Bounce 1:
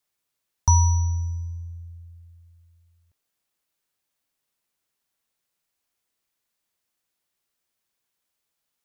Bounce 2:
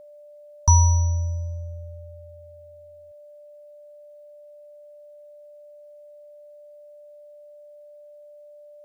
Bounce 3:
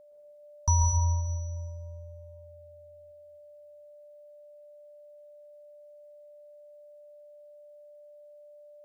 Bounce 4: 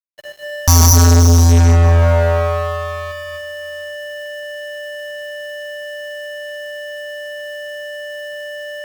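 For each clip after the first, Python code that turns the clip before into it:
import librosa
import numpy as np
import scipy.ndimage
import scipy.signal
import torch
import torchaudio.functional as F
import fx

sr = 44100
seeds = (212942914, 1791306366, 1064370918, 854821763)

y1 = x + 0.37 * np.pad(x, (int(1.9 * sr / 1000.0), 0))[:len(x)]
y1 = y1 + 10.0 ** (-44.0 / 20.0) * np.sin(2.0 * np.pi * 590.0 * np.arange(len(y1)) / sr)
y2 = fx.rev_plate(y1, sr, seeds[0], rt60_s=1.6, hf_ratio=0.7, predelay_ms=105, drr_db=1.0)
y2 = y2 * 10.0 ** (-8.5 / 20.0)
y3 = fx.notch_comb(y2, sr, f0_hz=230.0)
y3 = fx.fuzz(y3, sr, gain_db=47.0, gate_db=-51.0)
y3 = y3 * 10.0 ** (6.0 / 20.0)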